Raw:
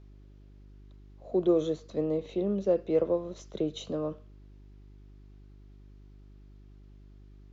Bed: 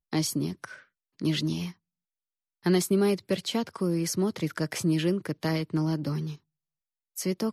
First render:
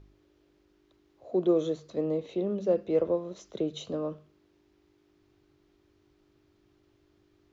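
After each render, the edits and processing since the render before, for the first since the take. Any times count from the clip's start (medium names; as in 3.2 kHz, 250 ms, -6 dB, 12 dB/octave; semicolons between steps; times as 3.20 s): de-hum 50 Hz, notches 5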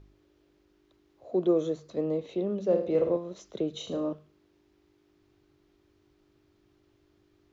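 1.48–1.90 s: peaking EQ 3.5 kHz -4 dB 0.93 oct; 2.65–3.17 s: flutter echo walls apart 8.8 m, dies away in 0.47 s; 3.71–4.13 s: flutter echo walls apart 6.2 m, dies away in 0.4 s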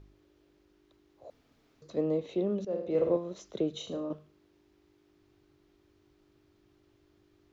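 1.30–1.82 s: room tone; 2.65–3.13 s: fade in, from -13 dB; 3.66–4.10 s: fade out, to -7 dB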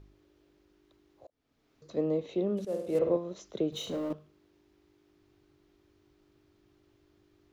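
1.27–1.91 s: fade in; 2.57–2.99 s: CVSD coder 64 kbps; 3.72–4.13 s: companding laws mixed up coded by mu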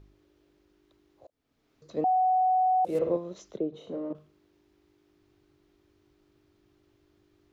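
2.04–2.85 s: bleep 744 Hz -20.5 dBFS; 3.57–4.15 s: band-pass filter 400 Hz, Q 0.71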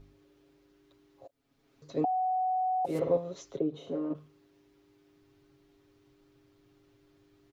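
comb 7.3 ms, depth 73%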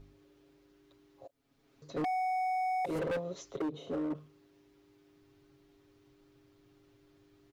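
overload inside the chain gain 30.5 dB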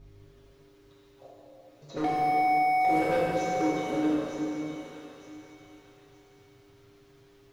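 feedback echo behind a high-pass 915 ms, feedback 32%, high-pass 1.6 kHz, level -8 dB; plate-style reverb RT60 3.3 s, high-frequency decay 0.9×, DRR -7 dB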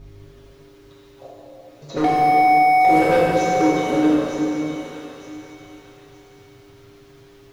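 trim +10 dB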